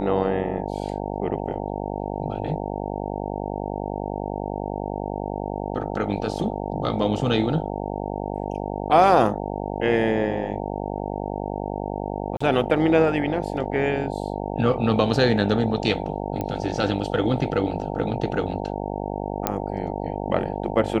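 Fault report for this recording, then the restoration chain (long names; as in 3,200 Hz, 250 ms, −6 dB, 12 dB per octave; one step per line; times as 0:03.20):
mains buzz 50 Hz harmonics 18 −29 dBFS
0:12.37–0:12.40: drop-out 35 ms
0:16.41: click −15 dBFS
0:19.47: click −5 dBFS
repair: click removal
hum removal 50 Hz, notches 18
repair the gap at 0:12.37, 35 ms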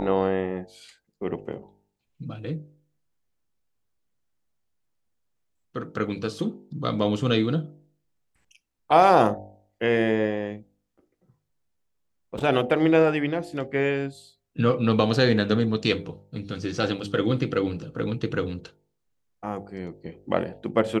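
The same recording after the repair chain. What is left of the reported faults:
none of them is left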